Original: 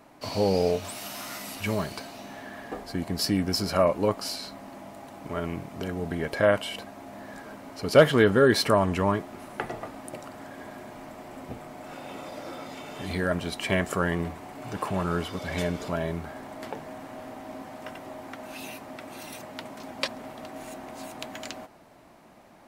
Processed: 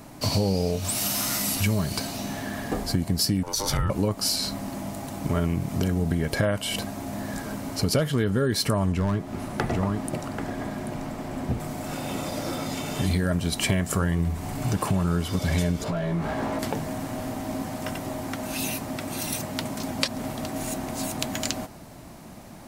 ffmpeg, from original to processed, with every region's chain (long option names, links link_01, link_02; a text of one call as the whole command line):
ffmpeg -i in.wav -filter_complex "[0:a]asettb=1/sr,asplit=3[link_01][link_02][link_03];[link_01]atrim=end=3.434[link_04];[link_02]atrim=start=3.43:end=3.9,asetpts=PTS-STARTPTS,afade=type=in:duration=0.004:curve=qsin,afade=type=out:start_time=0.466:duration=0.004:curve=qsin,acompressor=threshold=-26dB:ratio=4:attack=3.2:release=140:knee=1:detection=peak,aeval=exprs='val(0)*sin(2*PI*700*n/s)':channel_layout=same[link_05];[link_03]atrim=start=3.896[link_06];[link_04][link_05]acrossfade=duration=0.004:curve1=hsin:curve2=qsin[link_07];[link_07][link_06]acrossfade=duration=0.004:curve1=qsin:curve2=hsin,asettb=1/sr,asplit=3[link_08][link_09][link_10];[link_08]atrim=end=8.924[link_11];[link_09]atrim=start=8.92:end=11.6,asetpts=PTS-STARTPTS,afade=type=in:duration=0.004:curve=qsin,afade=type=out:start_time=2.676:duration=0.004:curve=qsin,highshelf=frequency=5500:gain=-10.5,aecho=1:1:787:0.299,atrim=end_sample=118188,asoftclip=type=hard:threshold=-20.5dB[link_12];[link_10]atrim=start=11.596[link_13];[link_11][link_12]acrossfade=duration=0.004:curve1=hsin:curve2=qsin[link_14];[link_14][link_13]acrossfade=duration=0.004:curve1=qsin:curve2=hsin,asettb=1/sr,asplit=3[link_15][link_16][link_17];[link_15]atrim=end=13.834[link_18];[link_16]atrim=start=13.83:end=14.66,asetpts=PTS-STARTPTS,afade=type=in:duration=0.004:curve=qsin,afade=type=out:start_time=0.826:duration=0.004:curve=qsin,asubboost=boost=6:cutoff=170,bandreject=frequency=60:width_type=h:width=6,bandreject=frequency=120:width_type=h:width=6,bandreject=frequency=180:width_type=h:width=6,bandreject=frequency=240:width_type=h:width=6,bandreject=frequency=300:width_type=h:width=6,bandreject=frequency=360:width_type=h:width=6,bandreject=frequency=420:width_type=h:width=6,bandreject=frequency=480:width_type=h:width=6,bandreject=frequency=540:width_type=h:width=6,bandreject=frequency=600:width_type=h:width=6[link_19];[link_17]atrim=start=14.656[link_20];[link_18][link_19]acrossfade=duration=0.004:curve1=hsin:curve2=qsin[link_21];[link_21][link_20]acrossfade=duration=0.004:curve1=qsin:curve2=hsin,asettb=1/sr,asplit=3[link_22][link_23][link_24];[link_22]atrim=end=15.844[link_25];[link_23]atrim=start=15.84:end=16.59,asetpts=PTS-STARTPTS,afade=type=in:duration=0.004:curve=qsin,afade=type=out:start_time=0.746:duration=0.004:curve=qsin,acompressor=threshold=-36dB:ratio=6:attack=3.2:release=140:knee=1:detection=peak,asplit=2[link_26][link_27];[link_27]highpass=frequency=720:poles=1,volume=18dB,asoftclip=type=tanh:threshold=-27dB[link_28];[link_26][link_28]amix=inputs=2:normalize=0,lowpass=frequency=1100:poles=1,volume=-6dB,asplit=2[link_29][link_30];[link_30]adelay=18,volume=-3dB[link_31];[link_29][link_31]amix=inputs=2:normalize=0,atrim=end_sample=33075[link_32];[link_24]atrim=start=16.586[link_33];[link_25][link_32]acrossfade=duration=0.004:curve1=hsin:curve2=qsin[link_34];[link_34][link_33]acrossfade=duration=0.004:curve1=qsin:curve2=hsin,bass=frequency=250:gain=12,treble=frequency=4000:gain=10,acompressor=threshold=-26dB:ratio=8,volume=5.5dB" out.wav